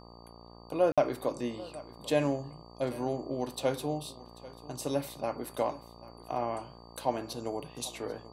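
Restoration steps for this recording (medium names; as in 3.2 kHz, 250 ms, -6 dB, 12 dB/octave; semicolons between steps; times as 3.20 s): de-hum 58.2 Hz, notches 21; band-stop 4.6 kHz, Q 30; interpolate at 0.92 s, 56 ms; inverse comb 790 ms -19 dB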